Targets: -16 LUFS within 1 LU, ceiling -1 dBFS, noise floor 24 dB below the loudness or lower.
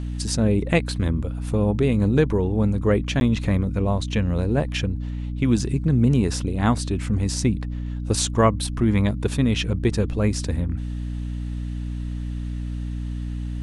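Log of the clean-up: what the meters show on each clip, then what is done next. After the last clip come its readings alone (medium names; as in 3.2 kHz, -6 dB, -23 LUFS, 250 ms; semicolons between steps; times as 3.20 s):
dropouts 1; longest dropout 11 ms; hum 60 Hz; highest harmonic 300 Hz; hum level -26 dBFS; loudness -23.0 LUFS; peak level -5.0 dBFS; loudness target -16.0 LUFS
-> interpolate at 3.20 s, 11 ms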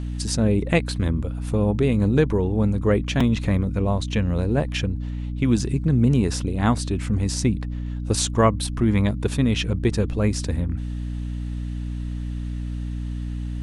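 dropouts 0; hum 60 Hz; highest harmonic 300 Hz; hum level -26 dBFS
-> hum notches 60/120/180/240/300 Hz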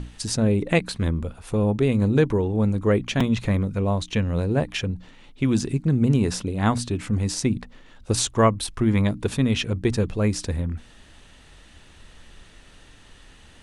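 hum not found; loudness -23.5 LUFS; peak level -6.0 dBFS; loudness target -16.0 LUFS
-> trim +7.5 dB; peak limiter -1 dBFS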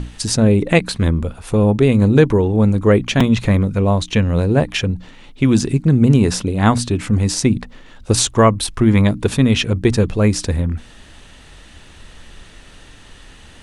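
loudness -16.0 LUFS; peak level -1.0 dBFS; noise floor -43 dBFS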